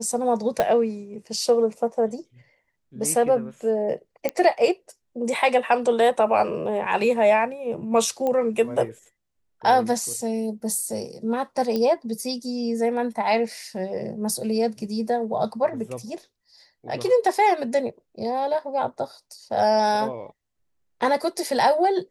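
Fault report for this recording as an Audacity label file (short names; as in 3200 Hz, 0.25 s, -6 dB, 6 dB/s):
0.600000	0.600000	pop -8 dBFS
4.290000	4.290000	pop -10 dBFS
8.270000	8.270000	pop -15 dBFS
11.760000	11.760000	pop -14 dBFS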